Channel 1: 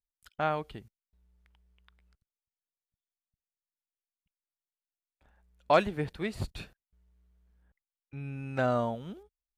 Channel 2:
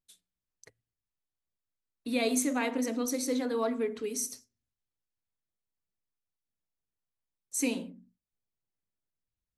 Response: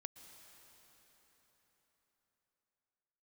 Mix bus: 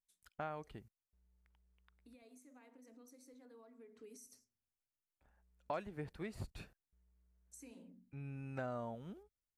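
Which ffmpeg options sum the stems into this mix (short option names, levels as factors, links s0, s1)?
-filter_complex "[0:a]acompressor=threshold=0.0224:ratio=3,volume=0.422[s0];[1:a]acompressor=threshold=0.0112:ratio=6,alimiter=level_in=3.35:limit=0.0631:level=0:latency=1:release=385,volume=0.299,volume=0.355,afade=t=in:st=3.74:d=0.69:silence=0.398107[s1];[s0][s1]amix=inputs=2:normalize=0,equalizer=f=3500:t=o:w=0.83:g=-6"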